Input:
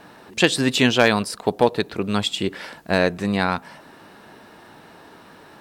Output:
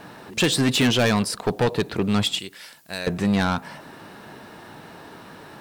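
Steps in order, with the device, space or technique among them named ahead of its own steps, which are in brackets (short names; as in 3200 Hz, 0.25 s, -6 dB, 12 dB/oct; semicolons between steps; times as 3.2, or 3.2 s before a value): 2.39–3.07 pre-emphasis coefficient 0.9; open-reel tape (soft clip -18.5 dBFS, distortion -6 dB; bell 130 Hz +4.5 dB 1.01 oct; white noise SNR 42 dB); gain +3 dB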